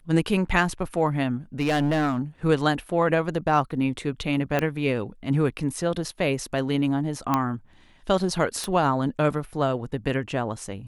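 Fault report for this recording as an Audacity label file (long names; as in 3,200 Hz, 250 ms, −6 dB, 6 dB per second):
1.590000	2.200000	clipping −18.5 dBFS
4.590000	4.590000	click −11 dBFS
7.340000	7.340000	click −9 dBFS
8.640000	8.640000	click −15 dBFS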